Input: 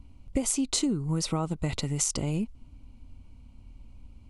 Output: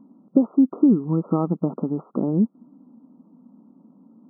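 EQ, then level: brick-wall FIR band-pass 160–1400 Hz; peaking EQ 240 Hz +9.5 dB 2.2 oct; +3.0 dB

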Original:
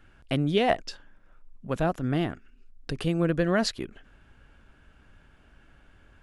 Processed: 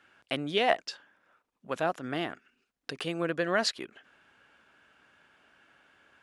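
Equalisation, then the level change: frequency weighting A; 0.0 dB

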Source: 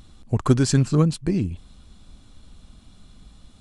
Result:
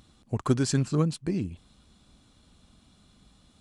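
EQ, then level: high-pass 120 Hz 6 dB/octave; -5.0 dB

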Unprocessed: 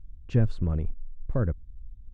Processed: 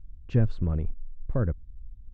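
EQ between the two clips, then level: distance through air 77 m; 0.0 dB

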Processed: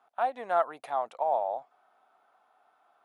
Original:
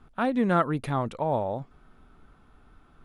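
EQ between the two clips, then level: resonant high-pass 720 Hz, resonance Q 4.6; -8.5 dB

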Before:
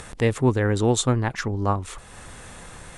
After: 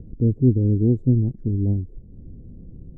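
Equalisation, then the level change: inverse Chebyshev low-pass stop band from 1.1 kHz, stop band 60 dB; +5.0 dB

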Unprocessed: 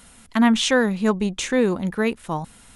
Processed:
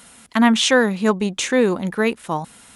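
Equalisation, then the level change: high-pass 210 Hz 6 dB/octave; +4.0 dB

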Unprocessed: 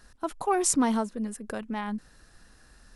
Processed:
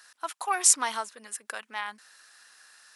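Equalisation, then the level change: high-pass 1.3 kHz 12 dB/octave; +6.5 dB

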